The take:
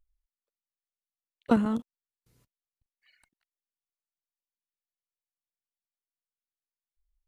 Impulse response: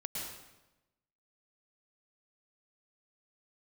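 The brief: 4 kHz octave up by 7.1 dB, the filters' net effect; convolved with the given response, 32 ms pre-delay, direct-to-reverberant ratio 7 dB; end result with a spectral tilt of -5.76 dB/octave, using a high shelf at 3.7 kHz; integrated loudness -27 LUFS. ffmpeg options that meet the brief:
-filter_complex "[0:a]highshelf=f=3700:g=7,equalizer=f=4000:t=o:g=5,asplit=2[s0][s1];[1:a]atrim=start_sample=2205,adelay=32[s2];[s1][s2]afir=irnorm=-1:irlink=0,volume=0.376[s3];[s0][s3]amix=inputs=2:normalize=0,volume=1.06"

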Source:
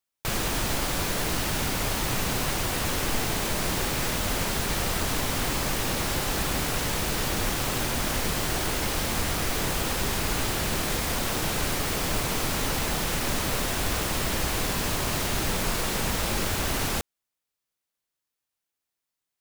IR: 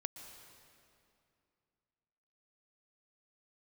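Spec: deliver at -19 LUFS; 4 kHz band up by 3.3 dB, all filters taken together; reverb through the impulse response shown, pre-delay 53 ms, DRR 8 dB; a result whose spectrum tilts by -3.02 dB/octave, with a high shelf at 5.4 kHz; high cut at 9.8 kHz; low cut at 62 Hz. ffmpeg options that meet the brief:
-filter_complex "[0:a]highpass=62,lowpass=9800,equalizer=f=4000:t=o:g=6.5,highshelf=f=5400:g=-5.5,asplit=2[s0][s1];[1:a]atrim=start_sample=2205,adelay=53[s2];[s1][s2]afir=irnorm=-1:irlink=0,volume=0.501[s3];[s0][s3]amix=inputs=2:normalize=0,volume=2.37"

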